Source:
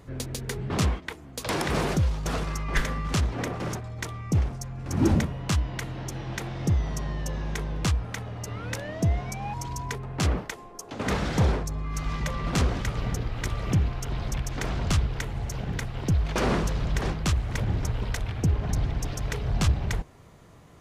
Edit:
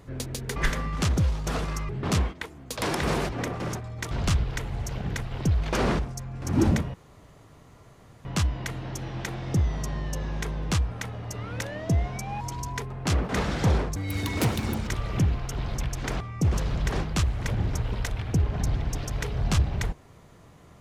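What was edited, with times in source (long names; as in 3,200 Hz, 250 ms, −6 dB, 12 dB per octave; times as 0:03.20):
0:00.56–0:01.96: swap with 0:02.68–0:03.29
0:04.11–0:04.43: swap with 0:14.74–0:16.62
0:05.38: splice in room tone 1.31 s
0:10.42–0:11.03: remove
0:11.70–0:13.41: play speed 187%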